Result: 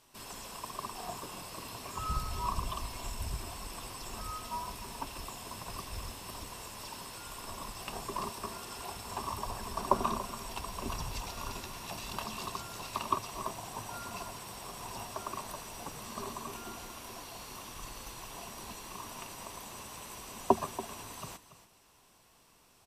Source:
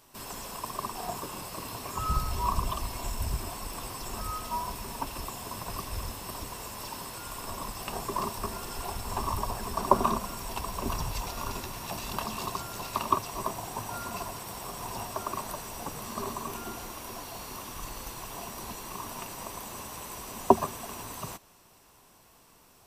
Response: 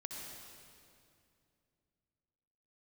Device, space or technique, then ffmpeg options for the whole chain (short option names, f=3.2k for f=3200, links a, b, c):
presence and air boost: -filter_complex "[0:a]equalizer=f=3.2k:t=o:w=1.6:g=3.5,highshelf=f=10k:g=3.5,asettb=1/sr,asplit=3[a][b][c];[a]atrim=end=8.324[d];[b]atrim=start=8.32:end=9.45,asetpts=PTS-STARTPTS,afade=t=in:d=0.004:c=qsin,afade=t=out:st=1.126:d=0.004:c=qsin,highpass=f=110:p=1[e];[c]atrim=start=9.446[f];[d][e]acrossfade=d=0.004:c1=hsin:c2=qsin[g];[g][f]acrossfade=d=0.004:c1=qsin:c2=hsin,lowpass=12k,aecho=1:1:284:0.188,volume=-6dB"